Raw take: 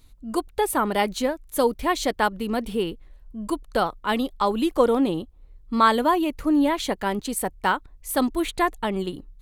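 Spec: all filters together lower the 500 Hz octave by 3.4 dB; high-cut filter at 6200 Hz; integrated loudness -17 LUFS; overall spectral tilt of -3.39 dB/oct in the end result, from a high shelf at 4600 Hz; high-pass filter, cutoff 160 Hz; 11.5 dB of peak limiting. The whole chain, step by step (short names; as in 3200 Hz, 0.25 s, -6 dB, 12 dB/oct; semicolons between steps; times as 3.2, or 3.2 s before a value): HPF 160 Hz; LPF 6200 Hz; bell 500 Hz -4 dB; high shelf 4600 Hz -3.5 dB; gain +12 dB; limiter -6 dBFS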